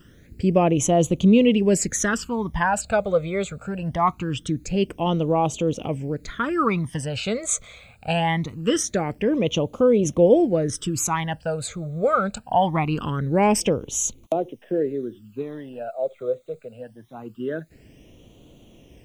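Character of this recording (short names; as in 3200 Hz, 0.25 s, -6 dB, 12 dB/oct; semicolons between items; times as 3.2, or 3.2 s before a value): a quantiser's noise floor 12-bit, dither triangular; phasing stages 12, 0.23 Hz, lowest notch 290–1700 Hz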